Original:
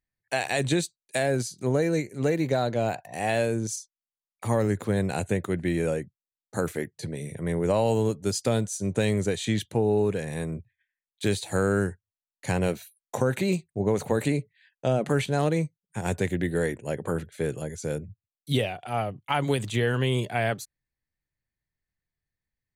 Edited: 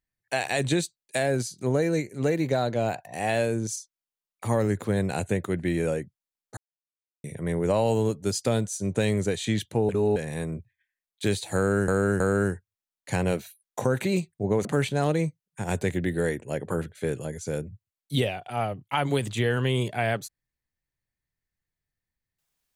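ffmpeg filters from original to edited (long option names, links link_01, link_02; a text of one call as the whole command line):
ffmpeg -i in.wav -filter_complex "[0:a]asplit=8[link_01][link_02][link_03][link_04][link_05][link_06][link_07][link_08];[link_01]atrim=end=6.57,asetpts=PTS-STARTPTS,afade=type=out:start_time=6.566:duration=0.004:curve=hsin[link_09];[link_02]atrim=start=6.57:end=7.24,asetpts=PTS-STARTPTS,volume=0[link_10];[link_03]atrim=start=7.24:end=9.892,asetpts=PTS-STARTPTS,afade=type=in:duration=0.004:curve=hsin[link_11];[link_04]atrim=start=9.888:end=10.162,asetpts=PTS-STARTPTS,areverse[link_12];[link_05]atrim=start=10.158:end=11.882[link_13];[link_06]atrim=start=11.558:end=11.882[link_14];[link_07]atrim=start=11.558:end=14.012[link_15];[link_08]atrim=start=15.018[link_16];[link_09][link_10][link_11]concat=n=3:v=0:a=1[link_17];[link_17][link_12]acrossfade=duration=0.004:curve1=hsin:curve2=hsin[link_18];[link_18][link_13]acrossfade=duration=0.004:curve1=hsin:curve2=hsin[link_19];[link_19][link_14]acrossfade=duration=0.004:curve1=hsin:curve2=hsin[link_20];[link_20][link_15]acrossfade=duration=0.004:curve1=hsin:curve2=hsin[link_21];[link_21][link_16]acrossfade=duration=0.004:curve1=hsin:curve2=hsin" out.wav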